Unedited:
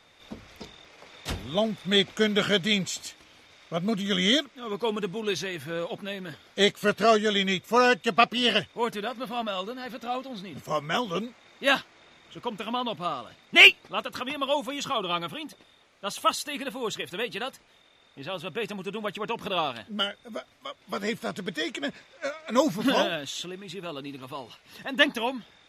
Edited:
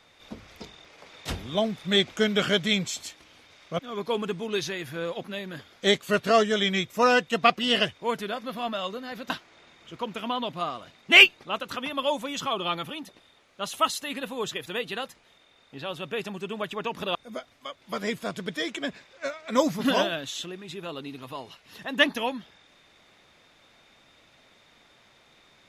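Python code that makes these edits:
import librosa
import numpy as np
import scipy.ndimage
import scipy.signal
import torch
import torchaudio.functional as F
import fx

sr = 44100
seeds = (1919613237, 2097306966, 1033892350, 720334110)

y = fx.edit(x, sr, fx.cut(start_s=3.79, length_s=0.74),
    fx.cut(start_s=10.04, length_s=1.7),
    fx.cut(start_s=19.59, length_s=0.56), tone=tone)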